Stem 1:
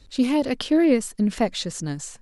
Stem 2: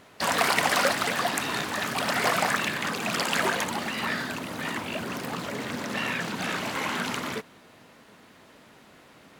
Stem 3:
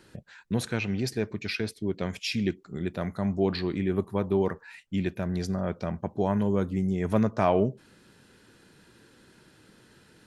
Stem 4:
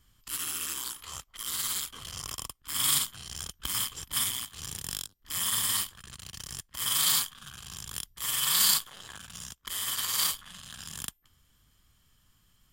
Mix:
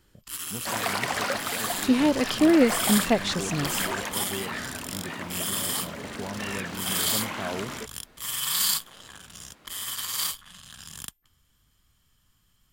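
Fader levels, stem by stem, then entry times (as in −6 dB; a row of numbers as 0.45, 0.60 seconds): −0.5, −5.0, −11.0, −1.0 decibels; 1.70, 0.45, 0.00, 0.00 seconds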